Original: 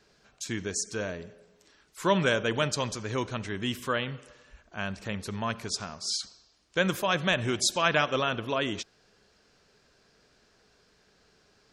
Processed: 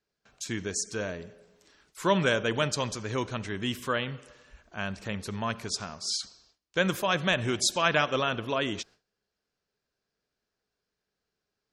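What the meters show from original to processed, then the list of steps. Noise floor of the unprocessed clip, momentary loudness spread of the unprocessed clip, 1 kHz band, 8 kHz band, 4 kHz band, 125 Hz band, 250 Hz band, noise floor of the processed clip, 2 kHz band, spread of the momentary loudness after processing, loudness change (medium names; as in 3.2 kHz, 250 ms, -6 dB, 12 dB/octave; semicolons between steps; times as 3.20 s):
-65 dBFS, 12 LU, 0.0 dB, 0.0 dB, 0.0 dB, 0.0 dB, 0.0 dB, under -85 dBFS, 0.0 dB, 12 LU, 0.0 dB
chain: gate with hold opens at -51 dBFS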